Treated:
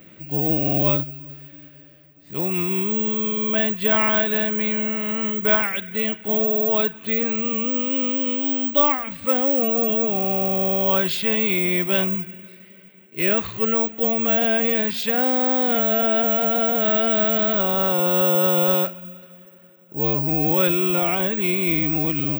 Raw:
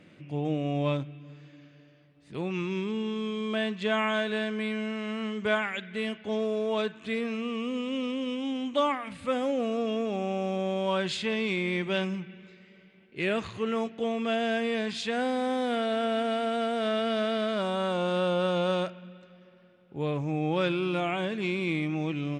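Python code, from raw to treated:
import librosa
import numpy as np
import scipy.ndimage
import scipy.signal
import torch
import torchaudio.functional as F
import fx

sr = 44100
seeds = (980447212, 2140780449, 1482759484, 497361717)

y = (np.kron(scipy.signal.resample_poly(x, 1, 2), np.eye(2)[0]) * 2)[:len(x)]
y = y * librosa.db_to_amplitude(5.5)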